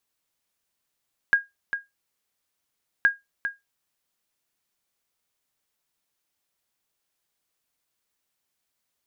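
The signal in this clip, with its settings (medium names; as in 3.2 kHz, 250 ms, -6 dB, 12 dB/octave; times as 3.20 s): sonar ping 1.63 kHz, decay 0.18 s, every 1.72 s, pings 2, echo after 0.40 s, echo -9.5 dB -10 dBFS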